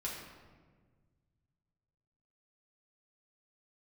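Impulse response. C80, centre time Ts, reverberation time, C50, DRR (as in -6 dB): 4.0 dB, 64 ms, 1.5 s, 2.0 dB, -5.5 dB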